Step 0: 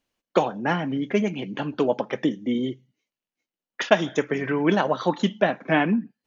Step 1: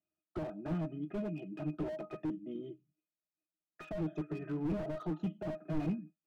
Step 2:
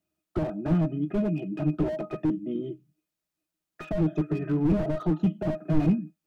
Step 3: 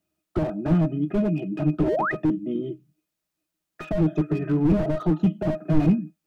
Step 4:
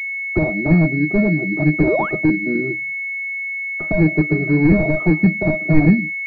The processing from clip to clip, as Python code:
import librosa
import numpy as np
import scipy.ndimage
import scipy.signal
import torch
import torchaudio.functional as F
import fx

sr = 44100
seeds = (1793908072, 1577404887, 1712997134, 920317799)

y1 = scipy.signal.sosfilt(scipy.signal.butter(2, 130.0, 'highpass', fs=sr, output='sos'), x)
y1 = fx.octave_resonator(y1, sr, note='D#', decay_s=0.12)
y1 = fx.slew_limit(y1, sr, full_power_hz=7.3)
y2 = fx.low_shelf(y1, sr, hz=310.0, db=6.0)
y2 = y2 * 10.0 ** (8.0 / 20.0)
y3 = fx.spec_paint(y2, sr, seeds[0], shape='rise', start_s=1.87, length_s=0.25, low_hz=280.0, high_hz=2100.0, level_db=-28.0)
y3 = y3 * 10.0 ** (3.5 / 20.0)
y4 = fx.pwm(y3, sr, carrier_hz=2200.0)
y4 = y4 * 10.0 ** (6.5 / 20.0)